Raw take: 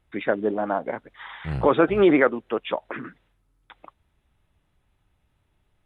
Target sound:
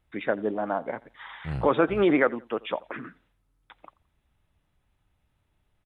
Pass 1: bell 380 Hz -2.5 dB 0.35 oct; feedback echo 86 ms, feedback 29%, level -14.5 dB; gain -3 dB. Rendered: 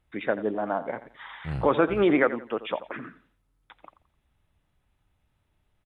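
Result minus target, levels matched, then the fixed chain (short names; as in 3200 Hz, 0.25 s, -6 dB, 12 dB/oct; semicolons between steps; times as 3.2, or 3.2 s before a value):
echo-to-direct +8.5 dB
bell 380 Hz -2.5 dB 0.35 oct; feedback echo 86 ms, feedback 29%, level -23 dB; gain -3 dB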